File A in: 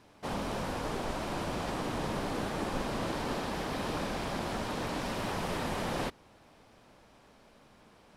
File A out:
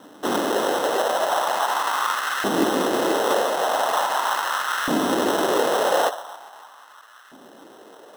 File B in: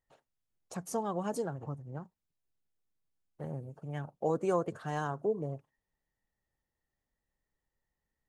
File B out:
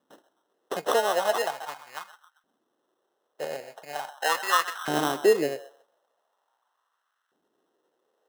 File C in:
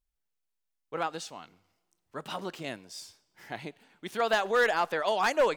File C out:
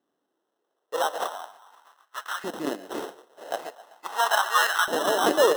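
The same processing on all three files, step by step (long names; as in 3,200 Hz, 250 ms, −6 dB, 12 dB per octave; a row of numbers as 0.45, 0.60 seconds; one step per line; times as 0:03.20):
high-shelf EQ 2,700 Hz +11 dB
echo through a band-pass that steps 130 ms, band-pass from 790 Hz, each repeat 0.7 octaves, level −11 dB
flanger 1.3 Hz, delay 5.5 ms, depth 8.7 ms, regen +77%
decimation without filtering 19×
auto-filter high-pass saw up 0.41 Hz 250–1,500 Hz
normalise the peak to −6 dBFS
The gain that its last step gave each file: +14.0, +11.0, +5.5 decibels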